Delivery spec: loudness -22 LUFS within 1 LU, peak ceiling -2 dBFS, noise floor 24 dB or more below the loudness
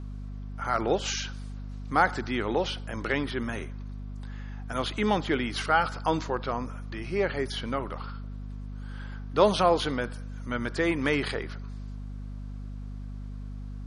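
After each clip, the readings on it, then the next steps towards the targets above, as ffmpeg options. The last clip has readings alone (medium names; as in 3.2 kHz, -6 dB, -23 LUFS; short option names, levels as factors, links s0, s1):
hum 50 Hz; highest harmonic 250 Hz; hum level -35 dBFS; loudness -28.5 LUFS; peak level -8.5 dBFS; loudness target -22.0 LUFS
-> -af "bandreject=f=50:t=h:w=4,bandreject=f=100:t=h:w=4,bandreject=f=150:t=h:w=4,bandreject=f=200:t=h:w=4,bandreject=f=250:t=h:w=4"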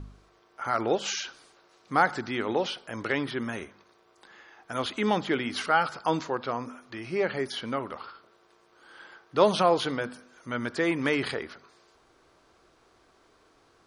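hum not found; loudness -28.5 LUFS; peak level -9.0 dBFS; loudness target -22.0 LUFS
-> -af "volume=2.11"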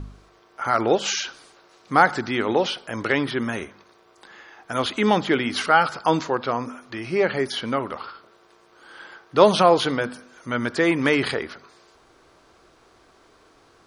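loudness -22.0 LUFS; peak level -2.5 dBFS; noise floor -56 dBFS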